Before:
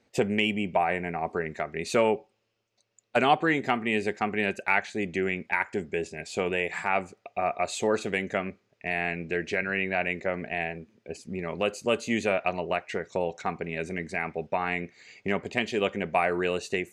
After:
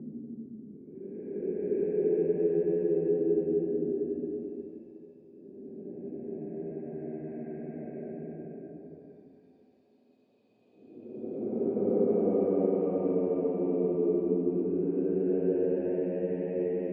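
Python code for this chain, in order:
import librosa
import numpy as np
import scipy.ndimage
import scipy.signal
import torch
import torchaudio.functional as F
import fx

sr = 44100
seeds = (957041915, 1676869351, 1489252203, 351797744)

y = fx.block_float(x, sr, bits=5)
y = fx.tilt_eq(y, sr, slope=-3.5)
y = fx.paulstretch(y, sr, seeds[0], factor=23.0, window_s=0.1, from_s=5.86)
y = fx.ladder_bandpass(y, sr, hz=320.0, resonance_pct=50)
y = F.gain(torch.from_numpy(y), 6.5).numpy()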